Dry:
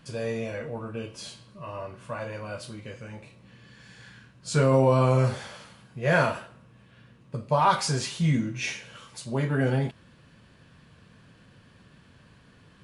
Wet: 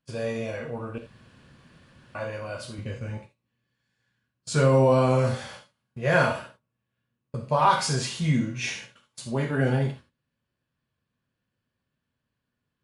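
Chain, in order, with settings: gate -43 dBFS, range -27 dB; 0.98–2.15 room tone; 2.78–3.18 low shelf 230 Hz +11.5 dB; non-linear reverb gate 0.1 s flat, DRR 5.5 dB

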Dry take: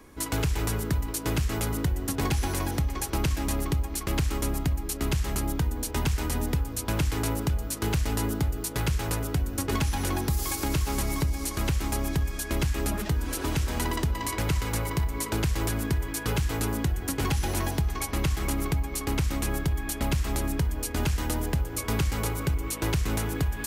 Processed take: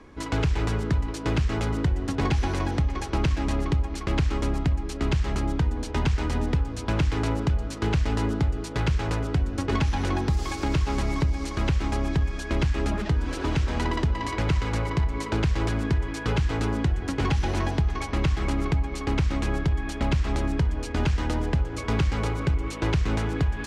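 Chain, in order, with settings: air absorption 130 m; gain +3 dB

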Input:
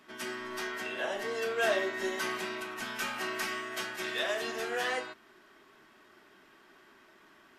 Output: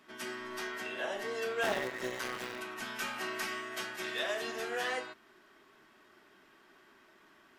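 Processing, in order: 1.63–2.59 cycle switcher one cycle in 3, muted; gain -2.5 dB

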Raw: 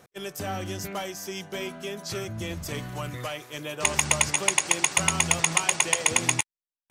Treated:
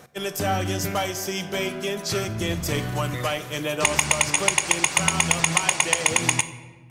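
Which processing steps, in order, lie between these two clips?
compressor 4:1, threshold -23 dBFS, peak gain reduction 7 dB; shoebox room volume 860 m³, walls mixed, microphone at 0.48 m; gain +7 dB

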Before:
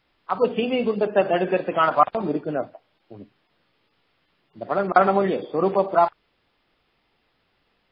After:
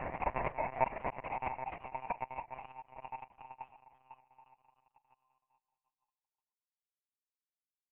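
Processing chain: treble ducked by the level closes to 530 Hz, closed at -14.5 dBFS; bell 95 Hz +12.5 dB 1 oct; power-law curve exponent 1.4; loudest bins only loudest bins 4; Paulstretch 13×, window 1.00 s, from 5.89; power-law curve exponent 3; formant shift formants +4 st; monotone LPC vocoder at 8 kHz 130 Hz; mismatched tape noise reduction decoder only; gain +7.5 dB

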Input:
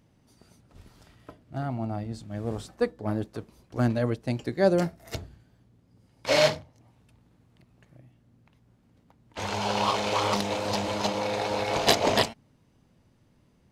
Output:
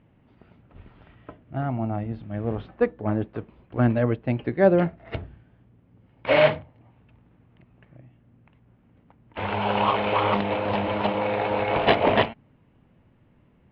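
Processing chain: steep low-pass 3000 Hz 36 dB/oct; gain +4 dB

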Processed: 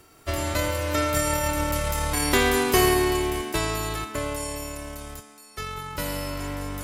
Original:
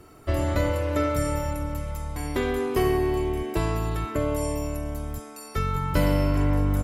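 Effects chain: spectral whitening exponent 0.6; Doppler pass-by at 2.18, 6 m/s, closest 4.4 m; gain +5.5 dB

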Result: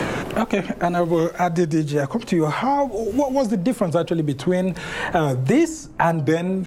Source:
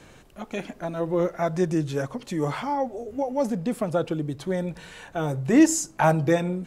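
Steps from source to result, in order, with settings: wow and flutter 94 cents; three-band squash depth 100%; gain +4.5 dB

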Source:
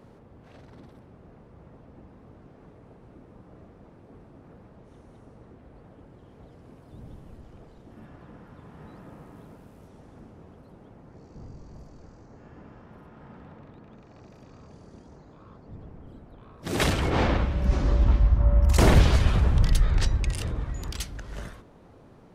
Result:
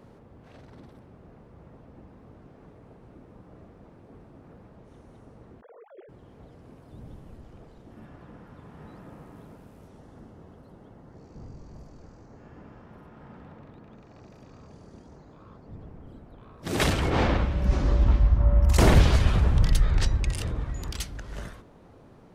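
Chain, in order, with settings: 5.61–6.09 sine-wave speech; 9.98–11.19 notch 2400 Hz, Q 9.3

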